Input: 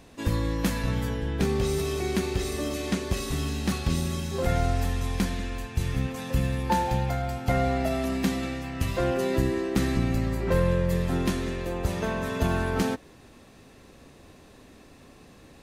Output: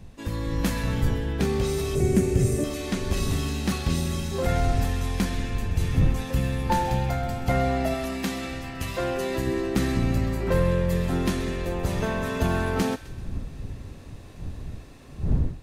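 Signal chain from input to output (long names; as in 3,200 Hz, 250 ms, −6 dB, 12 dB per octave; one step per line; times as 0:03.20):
wind on the microphone 97 Hz −32 dBFS
in parallel at −12 dB: soft clipping −23.5 dBFS, distortion −10 dB
0:01.95–0:02.64: on the sum: octave-band graphic EQ 125/250/500/1,000/4,000/8,000 Hz +12/+4/+6/−7/−11/+8 dB
automatic gain control gain up to 6.5 dB
0:07.94–0:09.47: low-shelf EQ 400 Hz −6.5 dB
on a send: delay with a high-pass on its return 129 ms, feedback 47%, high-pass 1,500 Hz, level −14 dB
on the sum: level −6.5 dB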